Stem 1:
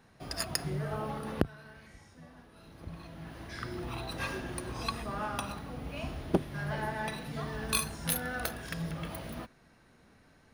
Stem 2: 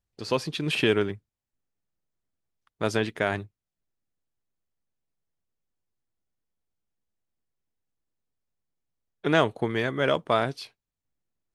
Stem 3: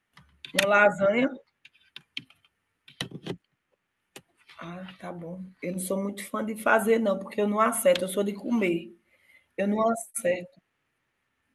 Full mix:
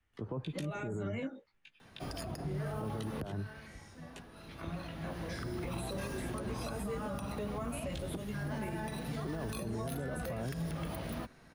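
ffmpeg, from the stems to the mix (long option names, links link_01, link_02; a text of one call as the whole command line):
ffmpeg -i stem1.wav -i stem2.wav -i stem3.wav -filter_complex "[0:a]adelay=1800,volume=3dB[link_01];[1:a]lowpass=frequency=1100:width=0.5412,lowpass=frequency=1100:width=1.3066,lowshelf=frequency=320:gain=8.5,alimiter=limit=-18.5dB:level=0:latency=1:release=28,volume=-3dB[link_02];[2:a]lowpass=9300,acrossover=split=360|3000[link_03][link_04][link_05];[link_04]acompressor=threshold=-25dB:ratio=6[link_06];[link_03][link_06][link_05]amix=inputs=3:normalize=0,flanger=delay=15.5:depth=3.5:speed=0.29,volume=-2.5dB[link_07];[link_01][link_02][link_07]amix=inputs=3:normalize=0,acrossover=split=110|220|820|6300[link_08][link_09][link_10][link_11][link_12];[link_08]acompressor=threshold=-42dB:ratio=4[link_13];[link_09]acompressor=threshold=-39dB:ratio=4[link_14];[link_10]acompressor=threshold=-40dB:ratio=4[link_15];[link_11]acompressor=threshold=-46dB:ratio=4[link_16];[link_12]acompressor=threshold=-48dB:ratio=4[link_17];[link_13][link_14][link_15][link_16][link_17]amix=inputs=5:normalize=0,alimiter=level_in=5.5dB:limit=-24dB:level=0:latency=1:release=46,volume=-5.5dB" out.wav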